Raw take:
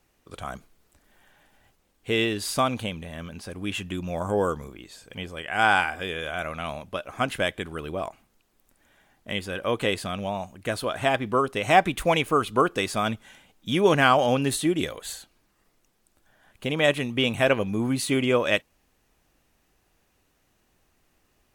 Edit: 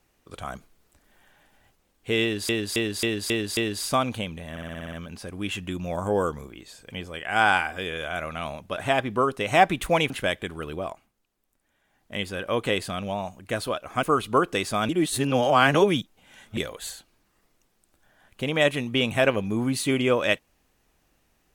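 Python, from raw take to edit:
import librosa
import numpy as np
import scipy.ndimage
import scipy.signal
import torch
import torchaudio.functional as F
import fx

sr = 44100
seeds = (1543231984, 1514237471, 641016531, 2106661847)

y = fx.edit(x, sr, fx.repeat(start_s=2.22, length_s=0.27, count=6),
    fx.stutter(start_s=3.16, slice_s=0.06, count=8),
    fx.swap(start_s=7.0, length_s=0.26, other_s=10.93, other_length_s=1.33),
    fx.fade_down_up(start_s=7.92, length_s=1.45, db=-9.5, fade_s=0.37),
    fx.reverse_span(start_s=13.12, length_s=1.68), tone=tone)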